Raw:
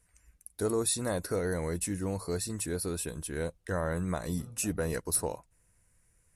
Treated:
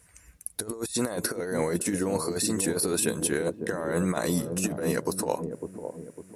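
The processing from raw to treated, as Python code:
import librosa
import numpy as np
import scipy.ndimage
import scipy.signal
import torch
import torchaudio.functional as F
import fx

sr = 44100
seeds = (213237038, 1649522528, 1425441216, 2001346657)

y = fx.highpass(x, sr, hz=fx.steps((0.0, 75.0), (0.71, 220.0)), slope=12)
y = fx.over_compress(y, sr, threshold_db=-36.0, ratio=-0.5)
y = fx.echo_wet_lowpass(y, sr, ms=553, feedback_pct=42, hz=520.0, wet_db=-5.0)
y = y * librosa.db_to_amplitude(8.5)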